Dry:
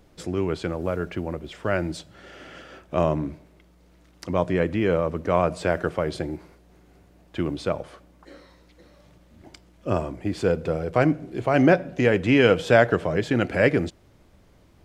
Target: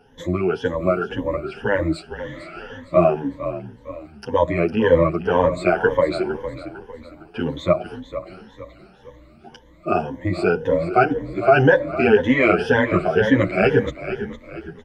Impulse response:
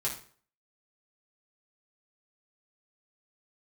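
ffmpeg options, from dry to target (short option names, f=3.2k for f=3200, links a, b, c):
-filter_complex "[0:a]afftfilt=real='re*pow(10,21/40*sin(2*PI*(1.1*log(max(b,1)*sr/1024/100)/log(2)-(1.9)*(pts-256)/sr)))':imag='im*pow(10,21/40*sin(2*PI*(1.1*log(max(b,1)*sr/1024/100)/log(2)-(1.9)*(pts-256)/sr)))':win_size=1024:overlap=0.75,bass=f=250:g=-4,treble=f=4k:g=-12,asplit=2[a][b];[b]asplit=4[c][d][e][f];[c]adelay=456,afreqshift=-35,volume=-12dB[g];[d]adelay=912,afreqshift=-70,volume=-19.7dB[h];[e]adelay=1368,afreqshift=-105,volume=-27.5dB[i];[f]adelay=1824,afreqshift=-140,volume=-35.2dB[j];[g][h][i][j]amix=inputs=4:normalize=0[k];[a][k]amix=inputs=2:normalize=0,alimiter=level_in=5dB:limit=-1dB:release=50:level=0:latency=1,asplit=2[l][m];[m]adelay=9.3,afreqshift=0.4[n];[l][n]amix=inputs=2:normalize=1"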